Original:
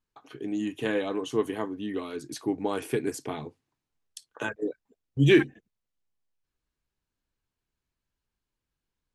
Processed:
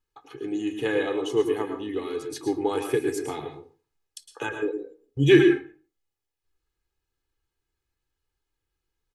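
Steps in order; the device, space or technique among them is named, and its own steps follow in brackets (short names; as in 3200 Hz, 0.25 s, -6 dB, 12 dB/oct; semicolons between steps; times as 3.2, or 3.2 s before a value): microphone above a desk (comb 2.4 ms, depth 65%; reverb RT60 0.40 s, pre-delay 0.104 s, DRR 5.5 dB)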